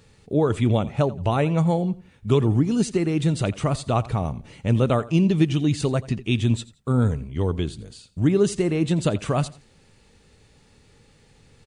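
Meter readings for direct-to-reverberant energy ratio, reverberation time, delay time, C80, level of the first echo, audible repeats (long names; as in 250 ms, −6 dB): no reverb audible, no reverb audible, 86 ms, no reverb audible, −19.0 dB, 2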